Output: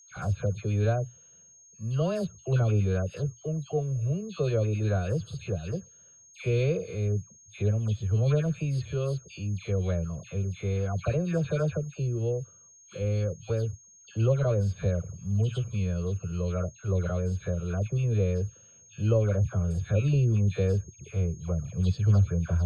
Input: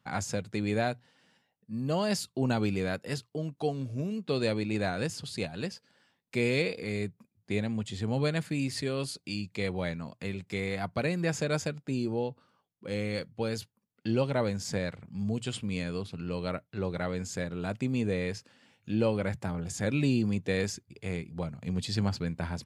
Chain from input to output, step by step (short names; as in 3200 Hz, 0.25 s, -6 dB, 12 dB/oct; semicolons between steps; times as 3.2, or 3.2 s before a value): RIAA curve playback; fixed phaser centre 1300 Hz, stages 8; dispersion lows, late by 0.109 s, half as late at 1600 Hz; whine 6500 Hz -53 dBFS